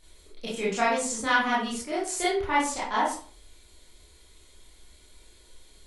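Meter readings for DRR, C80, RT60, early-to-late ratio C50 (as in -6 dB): -8.0 dB, 8.5 dB, 0.45 s, 3.5 dB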